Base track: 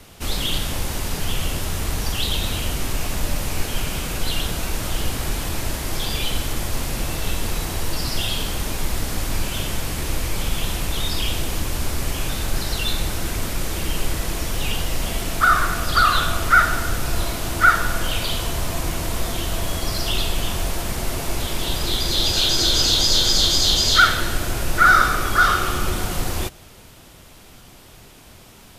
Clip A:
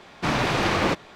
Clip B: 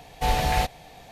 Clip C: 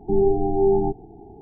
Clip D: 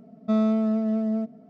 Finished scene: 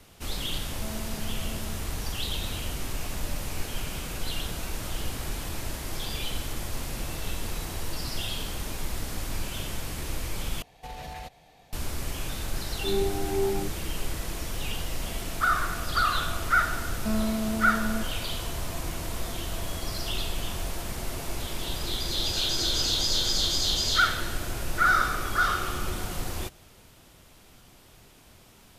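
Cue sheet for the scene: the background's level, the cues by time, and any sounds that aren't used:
base track -8.5 dB
0.52 add D -16 dB + rippled Chebyshev high-pass 170 Hz, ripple 6 dB
10.62 replace with B -9.5 dB + limiter -21 dBFS
12.7 add C -9 dB + dispersion lows, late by 0.122 s, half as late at 340 Hz
16.77 add D -8 dB + sample leveller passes 1
not used: A

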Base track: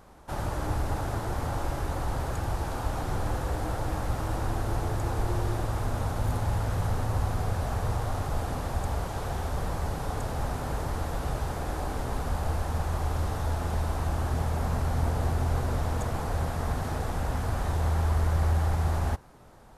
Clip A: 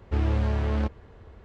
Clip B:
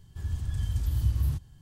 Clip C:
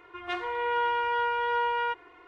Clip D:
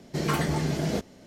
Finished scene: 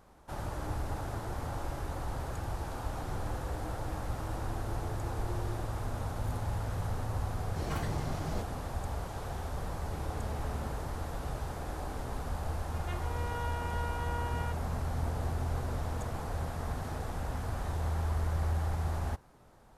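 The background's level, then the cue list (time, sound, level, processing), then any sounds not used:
base track -6.5 dB
7.42 add D -12.5 dB
9.81 add A -7.5 dB + compressor, threshold -29 dBFS
12.59 add C -12.5 dB
not used: B

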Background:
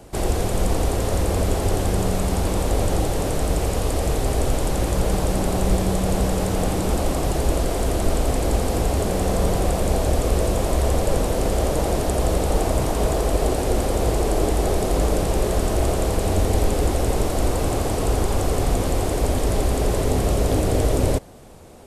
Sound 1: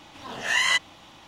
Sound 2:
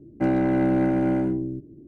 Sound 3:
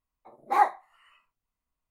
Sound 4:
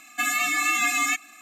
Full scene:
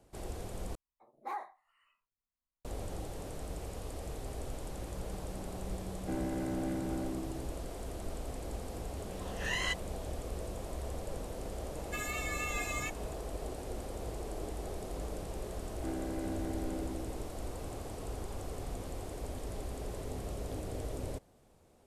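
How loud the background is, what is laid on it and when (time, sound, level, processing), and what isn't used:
background -20 dB
0.75 replace with 3 -12 dB + limiter -18.5 dBFS
5.87 add 2 -15.5 dB
8.96 add 1 -13 dB
11.74 add 4 -15 dB
15.63 add 2 -17.5 dB + Chebyshev high-pass 230 Hz

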